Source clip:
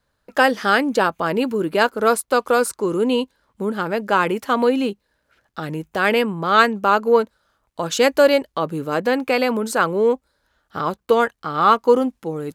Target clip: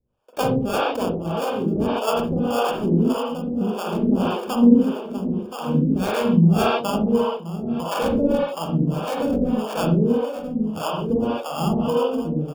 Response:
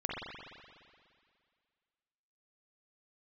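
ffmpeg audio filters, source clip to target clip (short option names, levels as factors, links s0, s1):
-filter_complex "[0:a]asplit=2[s0][s1];[s1]adelay=1025,lowpass=f=1200:p=1,volume=0.473,asplit=2[s2][s3];[s3]adelay=1025,lowpass=f=1200:p=1,volume=0.53,asplit=2[s4][s5];[s5]adelay=1025,lowpass=f=1200:p=1,volume=0.53,asplit=2[s6][s7];[s7]adelay=1025,lowpass=f=1200:p=1,volume=0.53,asplit=2[s8][s9];[s9]adelay=1025,lowpass=f=1200:p=1,volume=0.53,asplit=2[s10][s11];[s11]adelay=1025,lowpass=f=1200:p=1,volume=0.53,asplit=2[s12][s13];[s13]adelay=1025,lowpass=f=1200:p=1,volume=0.53[s14];[s0][s2][s4][s6][s8][s10][s12][s14]amix=inputs=8:normalize=0,asubboost=boost=7:cutoff=190,acrossover=split=830[s15][s16];[s16]acrusher=samples=22:mix=1:aa=0.000001[s17];[s15][s17]amix=inputs=2:normalize=0[s18];[1:a]atrim=start_sample=2205,afade=t=out:st=0.22:d=0.01,atrim=end_sample=10143[s19];[s18][s19]afir=irnorm=-1:irlink=0,acrossover=split=450[s20][s21];[s20]aeval=exprs='val(0)*(1-1/2+1/2*cos(2*PI*1.7*n/s))':c=same[s22];[s21]aeval=exprs='val(0)*(1-1/2-1/2*cos(2*PI*1.7*n/s))':c=same[s23];[s22][s23]amix=inputs=2:normalize=0,volume=0.891"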